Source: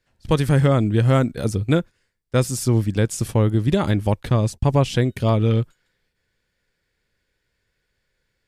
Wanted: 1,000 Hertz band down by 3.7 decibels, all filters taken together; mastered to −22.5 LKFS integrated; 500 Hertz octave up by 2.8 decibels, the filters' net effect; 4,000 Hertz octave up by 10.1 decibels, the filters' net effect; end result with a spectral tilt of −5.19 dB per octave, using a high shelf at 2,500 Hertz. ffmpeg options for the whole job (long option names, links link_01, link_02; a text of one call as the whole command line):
ffmpeg -i in.wav -af "equalizer=frequency=500:width_type=o:gain=5,equalizer=frequency=1000:width_type=o:gain=-9,highshelf=frequency=2500:gain=8,equalizer=frequency=4000:width_type=o:gain=6.5,volume=-4dB" out.wav